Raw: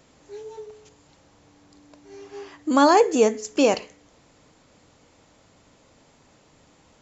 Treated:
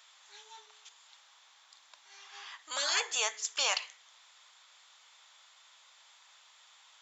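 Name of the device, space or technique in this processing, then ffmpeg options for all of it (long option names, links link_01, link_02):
headphones lying on a table: -af "highpass=frequency=1000:width=0.5412,highpass=frequency=1000:width=1.3066,equalizer=frequency=3500:width_type=o:width=0.33:gain=9.5,afftfilt=real='re*lt(hypot(re,im),0.178)':imag='im*lt(hypot(re,im),0.178)':win_size=1024:overlap=0.75"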